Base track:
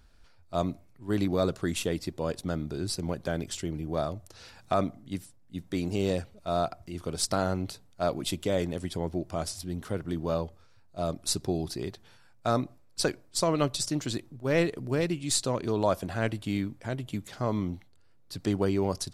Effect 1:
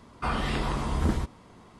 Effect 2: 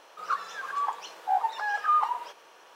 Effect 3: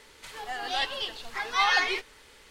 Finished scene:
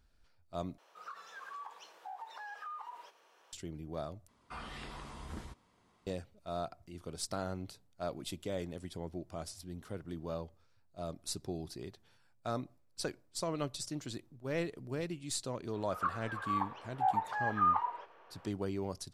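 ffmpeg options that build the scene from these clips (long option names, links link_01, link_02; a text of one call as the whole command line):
ffmpeg -i bed.wav -i cue0.wav -i cue1.wav -filter_complex "[2:a]asplit=2[link_01][link_02];[0:a]volume=-10.5dB[link_03];[link_01]acompressor=threshold=-30dB:ratio=6:attack=3.2:release=140:knee=1:detection=peak[link_04];[1:a]tiltshelf=frequency=880:gain=-3.5[link_05];[link_02]lowpass=1900[link_06];[link_03]asplit=3[link_07][link_08][link_09];[link_07]atrim=end=0.784[link_10];[link_04]atrim=end=2.75,asetpts=PTS-STARTPTS,volume=-12dB[link_11];[link_08]atrim=start=3.526:end=4.284[link_12];[link_05]atrim=end=1.79,asetpts=PTS-STARTPTS,volume=-16.5dB[link_13];[link_09]atrim=start=6.066[link_14];[link_06]atrim=end=2.75,asetpts=PTS-STARTPTS,volume=-4.5dB,afade=type=in:duration=0.004:curve=hsin,afade=type=out:start_time=2.746:duration=0.004:curve=hsin,adelay=15730[link_15];[link_10][link_11]acrossfade=duration=0.004:curve1=hsin:curve2=hsin[link_16];[link_16][link_12]acrossfade=duration=0.004:curve1=hsin:curve2=hsin[link_17];[link_17][link_13]acrossfade=duration=0.004:curve1=hsin:curve2=hsin[link_18];[link_18][link_14]acrossfade=duration=0.004:curve1=hsin:curve2=hsin[link_19];[link_19][link_15]amix=inputs=2:normalize=0" out.wav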